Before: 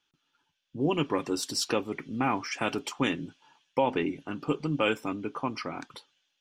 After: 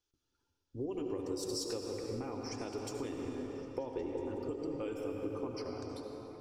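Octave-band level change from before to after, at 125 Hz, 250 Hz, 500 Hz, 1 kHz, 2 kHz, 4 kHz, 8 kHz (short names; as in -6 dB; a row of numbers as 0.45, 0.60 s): -9.0, -8.5, -6.0, -15.5, -19.5, -11.5, -8.0 dB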